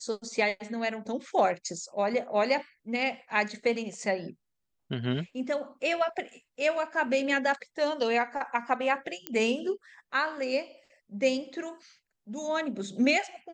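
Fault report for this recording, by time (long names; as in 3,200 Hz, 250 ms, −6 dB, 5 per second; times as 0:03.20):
0:09.27: click −15 dBFS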